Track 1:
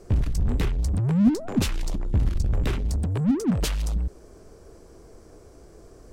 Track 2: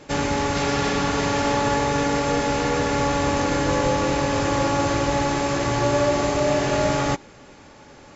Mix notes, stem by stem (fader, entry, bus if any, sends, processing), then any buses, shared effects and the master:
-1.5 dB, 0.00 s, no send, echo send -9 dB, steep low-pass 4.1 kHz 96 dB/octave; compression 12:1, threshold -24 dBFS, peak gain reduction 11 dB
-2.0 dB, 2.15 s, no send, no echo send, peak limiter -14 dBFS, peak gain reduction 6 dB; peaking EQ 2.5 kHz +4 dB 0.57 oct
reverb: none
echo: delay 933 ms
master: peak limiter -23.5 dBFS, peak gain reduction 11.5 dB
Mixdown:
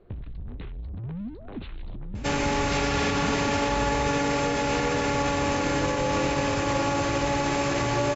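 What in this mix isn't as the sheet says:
stem 1 -1.5 dB -> -8.5 dB; master: missing peak limiter -23.5 dBFS, peak gain reduction 11.5 dB

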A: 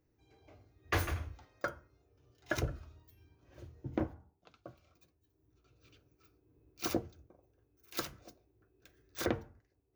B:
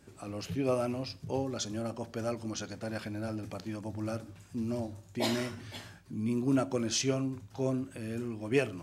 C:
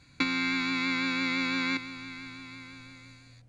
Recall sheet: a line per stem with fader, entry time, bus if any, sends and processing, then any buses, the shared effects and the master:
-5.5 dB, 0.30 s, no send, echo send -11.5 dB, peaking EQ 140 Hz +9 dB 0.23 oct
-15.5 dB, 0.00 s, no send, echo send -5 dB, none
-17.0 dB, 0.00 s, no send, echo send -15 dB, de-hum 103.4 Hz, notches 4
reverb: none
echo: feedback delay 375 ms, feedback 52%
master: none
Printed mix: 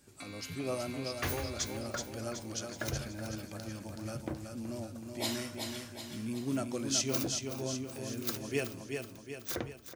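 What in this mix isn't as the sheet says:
stem B -15.5 dB -> -6.5 dB; stem C -17.0 dB -> -23.5 dB; master: extra treble shelf 4.2 kHz +11.5 dB

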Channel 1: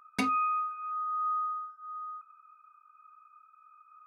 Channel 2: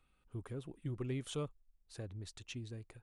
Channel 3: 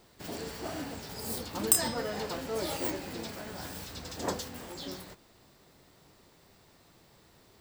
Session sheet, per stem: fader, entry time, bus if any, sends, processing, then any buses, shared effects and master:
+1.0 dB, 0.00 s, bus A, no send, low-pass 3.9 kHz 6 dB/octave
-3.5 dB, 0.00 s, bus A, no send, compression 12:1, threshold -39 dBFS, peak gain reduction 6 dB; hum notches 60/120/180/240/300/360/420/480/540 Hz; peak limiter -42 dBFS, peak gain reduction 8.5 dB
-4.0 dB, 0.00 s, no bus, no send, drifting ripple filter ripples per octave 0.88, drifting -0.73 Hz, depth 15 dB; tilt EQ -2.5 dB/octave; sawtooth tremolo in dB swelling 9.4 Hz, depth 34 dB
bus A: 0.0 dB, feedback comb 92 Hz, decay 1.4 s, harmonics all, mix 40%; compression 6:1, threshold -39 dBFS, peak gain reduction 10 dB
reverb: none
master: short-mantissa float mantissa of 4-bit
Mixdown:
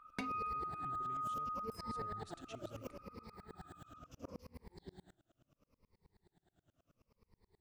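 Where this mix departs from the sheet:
stem 2: missing peak limiter -42 dBFS, peak gain reduction 8.5 dB; stem 3 -4.0 dB -> -11.5 dB; master: missing short-mantissa float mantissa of 4-bit

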